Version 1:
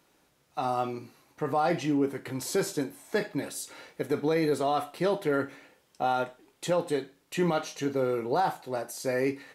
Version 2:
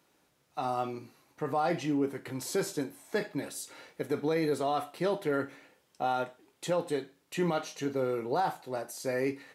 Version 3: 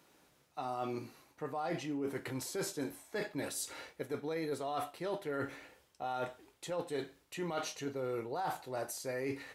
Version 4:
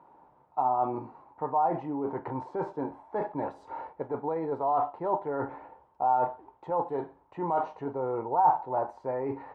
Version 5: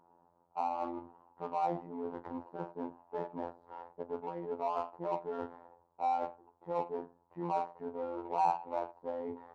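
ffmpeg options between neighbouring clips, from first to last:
ffmpeg -i in.wav -af "highpass=57,volume=-3dB" out.wav
ffmpeg -i in.wav -af "asubboost=boost=7:cutoff=65,areverse,acompressor=threshold=-38dB:ratio=6,areverse,volume=3dB" out.wav
ffmpeg -i in.wav -af "lowpass=frequency=910:width_type=q:width=6.9,volume=3.5dB" out.wav
ffmpeg -i in.wav -af "afftfilt=real='hypot(re,im)*cos(PI*b)':imag='0':win_size=2048:overlap=0.75,adynamicsmooth=sensitivity=5:basefreq=1300,volume=-3.5dB" out.wav

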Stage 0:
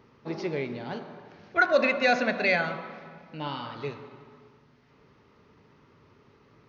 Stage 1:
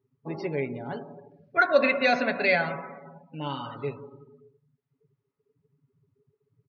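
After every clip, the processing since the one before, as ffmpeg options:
ffmpeg -i in.wav -af "aecho=1:1:7.2:0.42,afftdn=noise_reduction=30:noise_floor=-42" out.wav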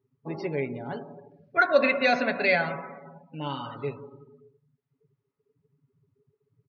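ffmpeg -i in.wav -af anull out.wav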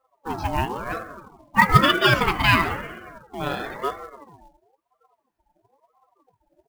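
ffmpeg -i in.wav -af "acrusher=bits=5:mode=log:mix=0:aa=0.000001,aeval=exprs='val(0)*sin(2*PI*680*n/s+680*0.35/1*sin(2*PI*1*n/s))':channel_layout=same,volume=8dB" out.wav

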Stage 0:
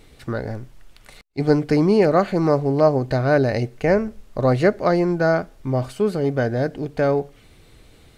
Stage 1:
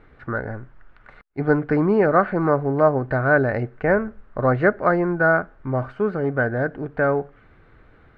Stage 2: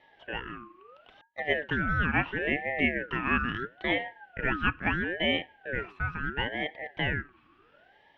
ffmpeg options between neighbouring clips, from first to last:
ffmpeg -i in.wav -af "lowpass=frequency=1500:width_type=q:width=3.2,volume=-2.5dB" out.wav
ffmpeg -i in.wav -af "afreqshift=360,aeval=exprs='val(0)*sin(2*PI*1000*n/s+1000*0.3/0.74*sin(2*PI*0.74*n/s))':channel_layout=same,volume=-7dB" out.wav

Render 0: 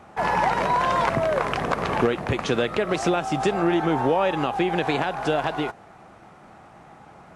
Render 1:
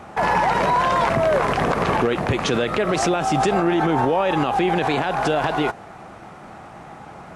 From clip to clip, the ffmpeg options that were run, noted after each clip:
ffmpeg -i in.wav -af "alimiter=limit=-19dB:level=0:latency=1:release=25,volume=8dB" out.wav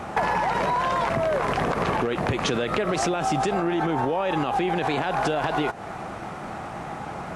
ffmpeg -i in.wav -af "acompressor=threshold=-26dB:ratio=12,volume=5.5dB" out.wav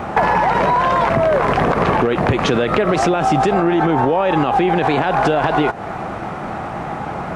ffmpeg -i in.wav -af "equalizer=frequency=10000:width=0.35:gain=-9.5,volume=9dB" out.wav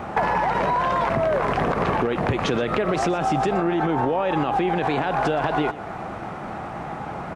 ffmpeg -i in.wav -af "aecho=1:1:121:0.141,volume=-6.5dB" out.wav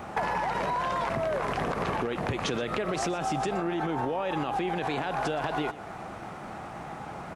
ffmpeg -i in.wav -af "highshelf=frequency=4200:gain=11,volume=-8dB" out.wav

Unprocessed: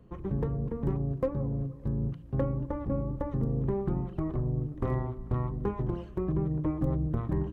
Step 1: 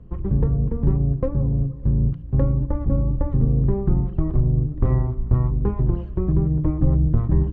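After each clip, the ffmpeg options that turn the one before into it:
ffmpeg -i in.wav -af "aemphasis=mode=reproduction:type=bsi,volume=2dB" out.wav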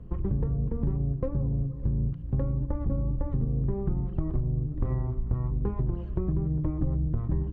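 ffmpeg -i in.wav -af "acompressor=threshold=-25dB:ratio=4" out.wav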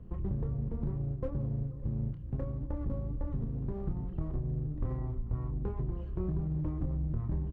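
ffmpeg -i in.wav -filter_complex "[0:a]asplit=2[link_01][link_02];[link_02]volume=32dB,asoftclip=hard,volume=-32dB,volume=-6dB[link_03];[link_01][link_03]amix=inputs=2:normalize=0,asplit=2[link_04][link_05];[link_05]adelay=27,volume=-8dB[link_06];[link_04][link_06]amix=inputs=2:normalize=0,volume=-8dB" out.wav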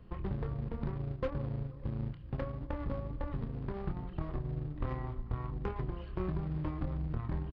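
ffmpeg -i in.wav -af "tiltshelf=frequency=810:gain=-9,aresample=11025,aresample=44100,aeval=exprs='0.0398*(cos(1*acos(clip(val(0)/0.0398,-1,1)))-cos(1*PI/2))+0.00224*(cos(7*acos(clip(val(0)/0.0398,-1,1)))-cos(7*PI/2))':channel_layout=same,volume=6.5dB" out.wav

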